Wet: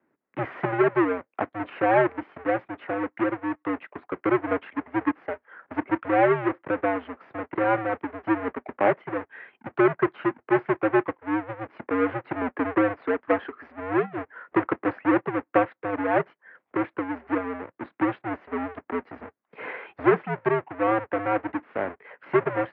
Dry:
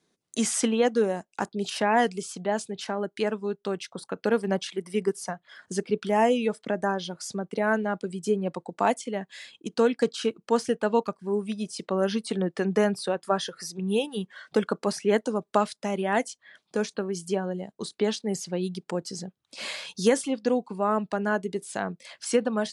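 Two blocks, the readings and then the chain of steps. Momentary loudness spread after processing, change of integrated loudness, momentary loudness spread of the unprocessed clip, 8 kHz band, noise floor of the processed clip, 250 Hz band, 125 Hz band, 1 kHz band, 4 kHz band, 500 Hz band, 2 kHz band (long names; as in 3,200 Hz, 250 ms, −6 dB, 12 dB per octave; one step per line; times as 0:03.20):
14 LU, +1.5 dB, 10 LU, below −40 dB, −78 dBFS, +1.5 dB, −0.5 dB, +3.0 dB, below −10 dB, +0.5 dB, +4.0 dB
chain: each half-wave held at its own peak
single-sideband voice off tune −100 Hz 340–2,200 Hz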